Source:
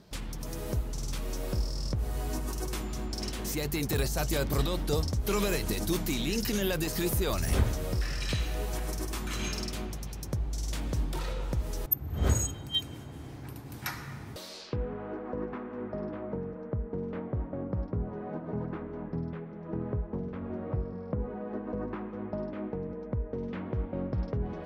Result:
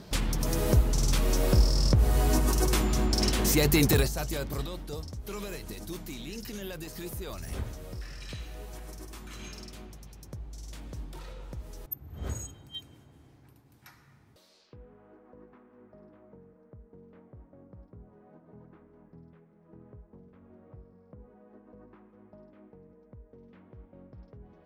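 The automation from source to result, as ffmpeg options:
ffmpeg -i in.wav -af "volume=9dB,afade=type=out:start_time=3.85:duration=0.27:silence=0.281838,afade=type=out:start_time=4.12:duration=0.77:silence=0.421697,afade=type=out:start_time=12.41:duration=1.34:silence=0.375837" out.wav

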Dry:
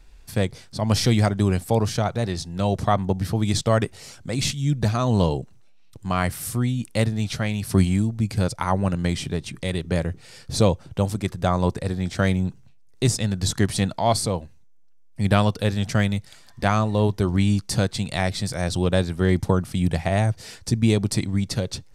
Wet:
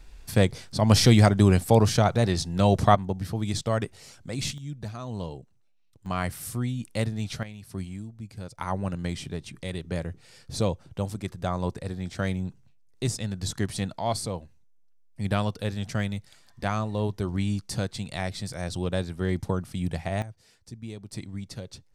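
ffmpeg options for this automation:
ffmpeg -i in.wav -af "asetnsamples=nb_out_samples=441:pad=0,asendcmd='2.95 volume volume -6.5dB;4.58 volume volume -14.5dB;6.06 volume volume -6dB;7.43 volume volume -16.5dB;8.58 volume volume -7.5dB;20.22 volume volume -20dB;21.13 volume volume -13dB',volume=2dB" out.wav

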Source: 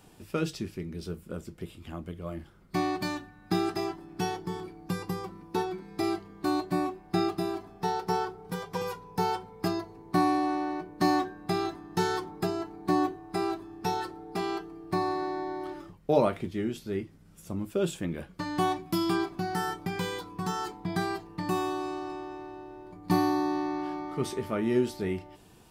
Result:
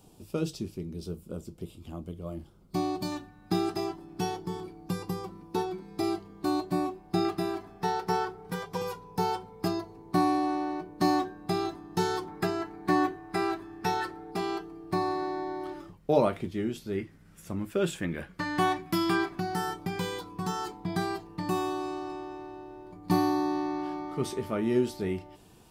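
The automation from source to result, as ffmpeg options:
ffmpeg -i in.wav -af "asetnsamples=nb_out_samples=441:pad=0,asendcmd='3.12 equalizer g -5.5;7.25 equalizer g 3;8.66 equalizer g -3.5;12.28 equalizer g 7.5;14.31 equalizer g -1;16.98 equalizer g 7.5;19.4 equalizer g -2.5',equalizer=frequency=1800:width_type=o:width=0.95:gain=-14.5" out.wav

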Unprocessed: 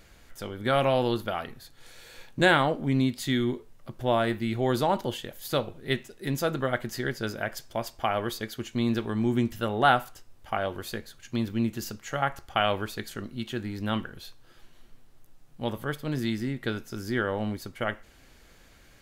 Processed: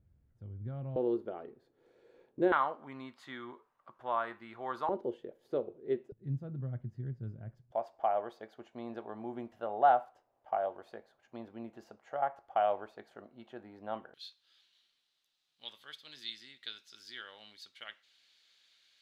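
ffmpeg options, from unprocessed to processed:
ffmpeg -i in.wav -af "asetnsamples=nb_out_samples=441:pad=0,asendcmd='0.96 bandpass f 400;2.52 bandpass f 1100;4.89 bandpass f 410;6.12 bandpass f 120;7.72 bandpass f 700;14.14 bandpass f 3800',bandpass=frequency=100:width_type=q:width=3.2:csg=0" out.wav

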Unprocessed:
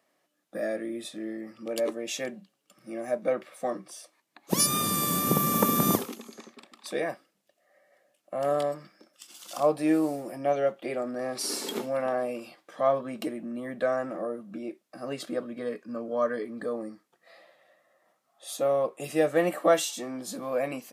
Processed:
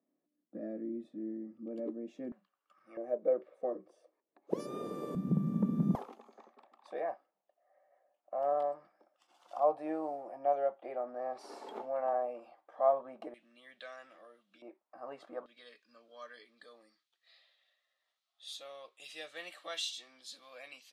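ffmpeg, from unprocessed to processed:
ffmpeg -i in.wav -af "asetnsamples=nb_out_samples=441:pad=0,asendcmd='2.32 bandpass f 1200;2.97 bandpass f 450;5.15 bandpass f 180;5.95 bandpass f 780;13.34 bandpass f 3400;14.62 bandpass f 890;15.46 bandpass f 3700',bandpass=frequency=260:width_type=q:width=2.8:csg=0" out.wav

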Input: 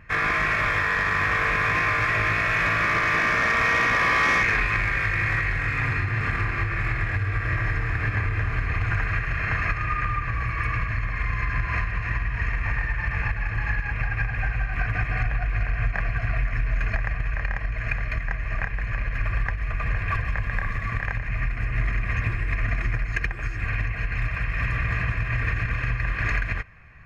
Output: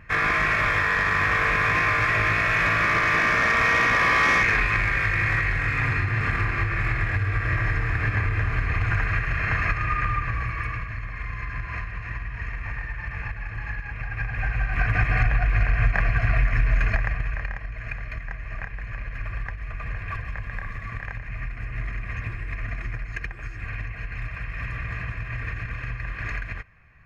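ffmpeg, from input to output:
ffmpeg -i in.wav -af "volume=11dB,afade=type=out:start_time=10.19:duration=0.66:silence=0.446684,afade=type=in:start_time=14.04:duration=0.99:silence=0.316228,afade=type=out:start_time=16.72:duration=0.89:silence=0.316228" out.wav

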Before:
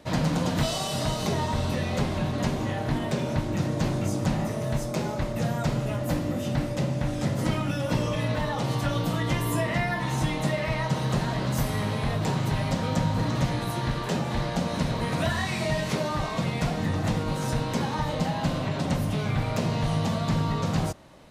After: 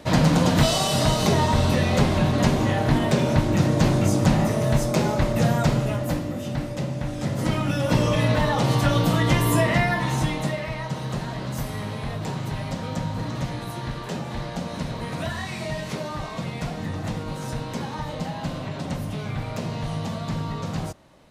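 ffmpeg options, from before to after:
ffmpeg -i in.wav -af "volume=14.5dB,afade=type=out:start_time=5.52:duration=0.77:silence=0.398107,afade=type=in:start_time=7.16:duration=0.98:silence=0.421697,afade=type=out:start_time=9.65:duration=1.06:silence=0.334965" out.wav

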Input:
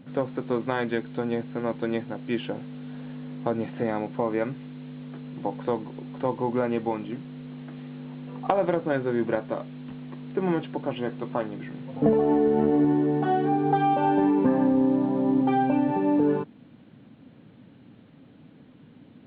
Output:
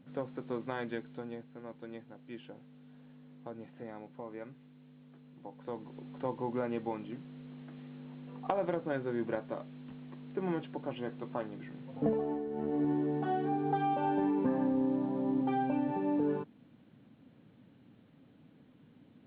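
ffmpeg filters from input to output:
ffmpeg -i in.wav -af "volume=7.5dB,afade=type=out:start_time=0.91:duration=0.57:silence=0.421697,afade=type=in:start_time=5.56:duration=0.44:silence=0.354813,afade=type=out:start_time=12.03:duration=0.44:silence=0.354813,afade=type=in:start_time=12.47:duration=0.43:silence=0.354813" out.wav

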